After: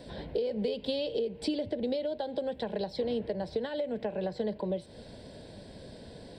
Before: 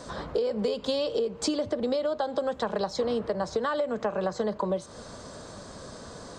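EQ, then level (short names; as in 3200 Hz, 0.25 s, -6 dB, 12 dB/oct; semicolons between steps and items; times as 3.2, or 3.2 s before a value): fixed phaser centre 2900 Hz, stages 4; -2.0 dB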